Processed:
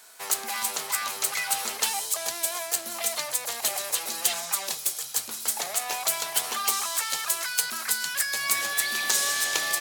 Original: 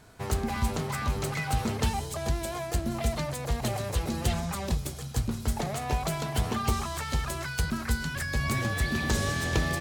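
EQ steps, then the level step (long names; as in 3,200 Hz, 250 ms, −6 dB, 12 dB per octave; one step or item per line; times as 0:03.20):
high-pass filter 670 Hz 12 dB per octave
high-shelf EQ 2,000 Hz +8 dB
high-shelf EQ 7,700 Hz +10.5 dB
0.0 dB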